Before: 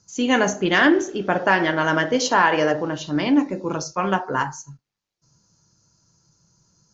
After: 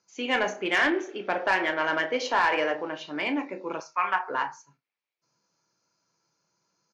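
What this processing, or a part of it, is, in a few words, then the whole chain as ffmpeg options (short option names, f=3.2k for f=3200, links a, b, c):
intercom: -filter_complex "[0:a]highpass=390,lowpass=3.7k,equalizer=f=2.3k:t=o:w=0.34:g=9.5,asoftclip=type=tanh:threshold=-9dB,asplit=2[a][b];[b]adelay=32,volume=-12dB[c];[a][c]amix=inputs=2:normalize=0,asettb=1/sr,asplit=3[d][e][f];[d]atrim=end=3.804[g];[e]atrim=start=3.8:end=4.28,asetpts=PTS-STARTPTS,afade=t=in:d=0.004:c=qsin,afade=t=out:st=0.476:d=0.004:c=qsin,equalizer=f=125:t=o:w=1:g=-11,equalizer=f=250:t=o:w=1:g=-10,equalizer=f=500:t=o:w=1:g=-12,equalizer=f=1k:t=o:w=1:g=7,equalizer=f=2k:t=o:w=1:g=6,equalizer=f=4k:t=o:w=1:g=-7[h];[f]atrim=start=4.276[i];[g][h]acrossfade=d=0.004:c1=hsin:c2=qsin[j];[j][i]acrossfade=d=0.004:c1=qsin:c2=hsin,volume=-5dB"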